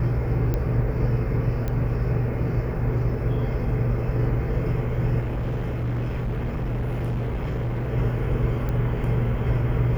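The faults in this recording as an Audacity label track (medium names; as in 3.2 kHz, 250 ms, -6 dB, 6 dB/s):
0.540000	0.540000	pop -14 dBFS
1.680000	1.680000	pop -16 dBFS
5.200000	7.890000	clipped -23 dBFS
8.690000	8.690000	pop -18 dBFS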